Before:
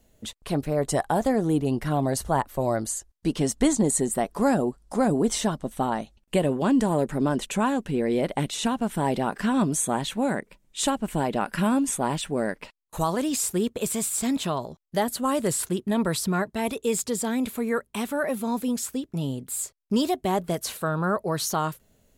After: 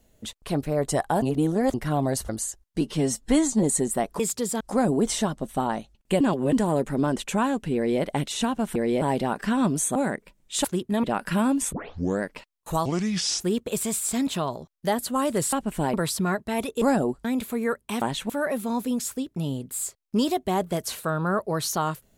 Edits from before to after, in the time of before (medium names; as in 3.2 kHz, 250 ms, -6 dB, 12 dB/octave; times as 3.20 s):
1.22–1.74 s: reverse
2.29–2.77 s: delete
3.29–3.84 s: stretch 1.5×
4.40–4.83 s: swap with 16.89–17.30 s
6.43–6.75 s: reverse
7.98–8.24 s: copy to 8.98 s
9.92–10.20 s: move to 18.07 s
10.89–11.30 s: swap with 15.62–16.01 s
11.99 s: tape start 0.49 s
13.12–13.50 s: speed 69%